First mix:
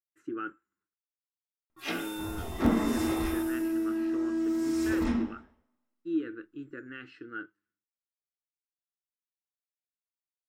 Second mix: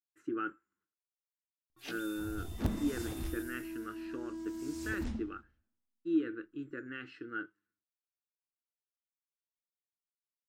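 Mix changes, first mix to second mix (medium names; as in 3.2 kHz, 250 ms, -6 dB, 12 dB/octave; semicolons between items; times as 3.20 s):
first sound -4.5 dB; reverb: off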